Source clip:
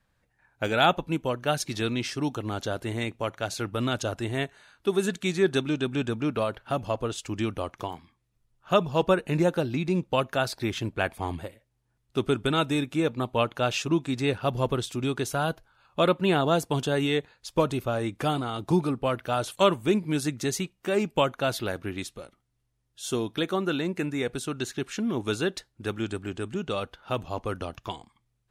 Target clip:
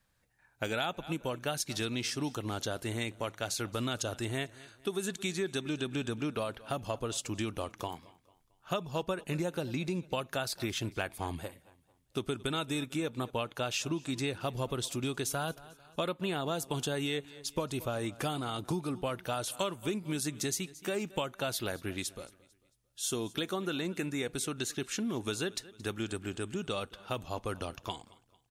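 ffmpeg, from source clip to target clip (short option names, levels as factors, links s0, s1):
-filter_complex "[0:a]highshelf=f=4100:g=10,asplit=2[s0][s1];[s1]aecho=0:1:223|446|669:0.0708|0.0297|0.0125[s2];[s0][s2]amix=inputs=2:normalize=0,acompressor=threshold=0.0501:ratio=6,volume=0.631"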